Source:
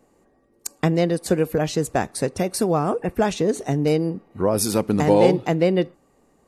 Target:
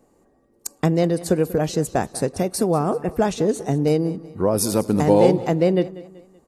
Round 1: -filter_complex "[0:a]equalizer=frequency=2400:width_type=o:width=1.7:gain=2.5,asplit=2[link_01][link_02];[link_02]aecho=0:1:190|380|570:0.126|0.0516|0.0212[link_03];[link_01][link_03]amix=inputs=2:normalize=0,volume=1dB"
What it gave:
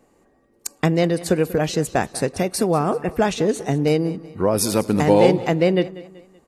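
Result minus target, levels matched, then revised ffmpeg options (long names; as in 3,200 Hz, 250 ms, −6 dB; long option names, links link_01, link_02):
2,000 Hz band +5.5 dB
-filter_complex "[0:a]equalizer=frequency=2400:width_type=o:width=1.7:gain=-5,asplit=2[link_01][link_02];[link_02]aecho=0:1:190|380|570:0.126|0.0516|0.0212[link_03];[link_01][link_03]amix=inputs=2:normalize=0,volume=1dB"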